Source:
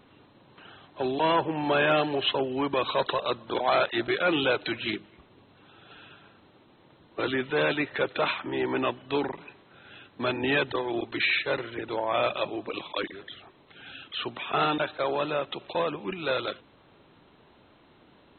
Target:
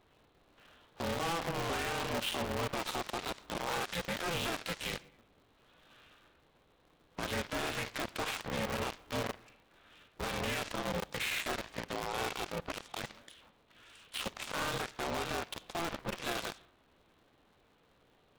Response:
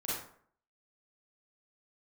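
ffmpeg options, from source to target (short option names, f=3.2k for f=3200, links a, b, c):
-filter_complex "[0:a]asplit=2[a][b];[b]equalizer=f=530:w=0.32:g=-14[c];[1:a]atrim=start_sample=2205[d];[c][d]afir=irnorm=-1:irlink=0,volume=-5dB[e];[a][e]amix=inputs=2:normalize=0,alimiter=limit=-21.5dB:level=0:latency=1:release=58,aeval=exprs='0.0841*(cos(1*acos(clip(val(0)/0.0841,-1,1)))-cos(1*PI/2))+0.0188*(cos(7*acos(clip(val(0)/0.0841,-1,1)))-cos(7*PI/2))':c=same,aeval=exprs='val(0)*sgn(sin(2*PI*170*n/s))':c=same,volume=-6dB"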